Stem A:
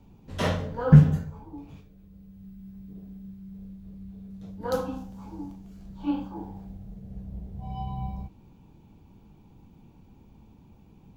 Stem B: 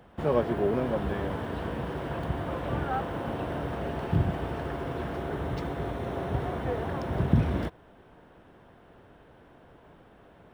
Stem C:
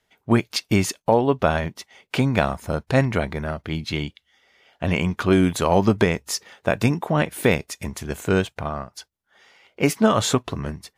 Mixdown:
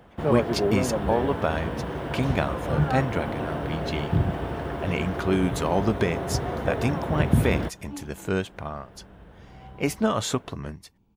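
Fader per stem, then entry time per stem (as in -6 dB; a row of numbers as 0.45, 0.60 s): -12.0, +2.5, -6.0 dB; 1.85, 0.00, 0.00 s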